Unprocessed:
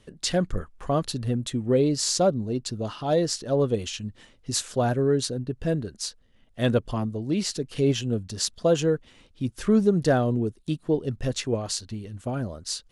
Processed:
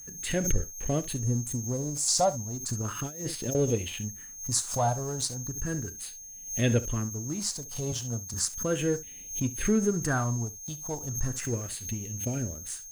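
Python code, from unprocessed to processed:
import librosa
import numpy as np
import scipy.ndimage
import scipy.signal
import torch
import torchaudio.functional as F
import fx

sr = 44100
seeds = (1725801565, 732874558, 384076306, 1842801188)

y = fx.band_shelf(x, sr, hz=2300.0, db=-15.0, octaves=2.7, at=(1.17, 2.08))
y = fx.highpass(y, sr, hz=96.0, slope=24, at=(7.92, 8.34))
y = fx.room_early_taps(y, sr, ms=(34, 68), db=(-16.5, -16.0))
y = fx.over_compress(y, sr, threshold_db=-28.0, ratio=-0.5, at=(2.7, 3.55))
y = fx.dynamic_eq(y, sr, hz=180.0, q=1.8, threshold_db=-38.0, ratio=4.0, max_db=-7)
y = fx.phaser_stages(y, sr, stages=4, low_hz=350.0, high_hz=1100.0, hz=0.35, feedback_pct=35)
y = y + 10.0 ** (-38.0 / 20.0) * np.sin(2.0 * np.pi * 6400.0 * np.arange(len(y)) / sr)
y = np.sign(y) * np.maximum(np.abs(y) - 10.0 ** (-45.5 / 20.0), 0.0)
y = fx.pre_swell(y, sr, db_per_s=110.0)
y = y * 10.0 ** (1.5 / 20.0)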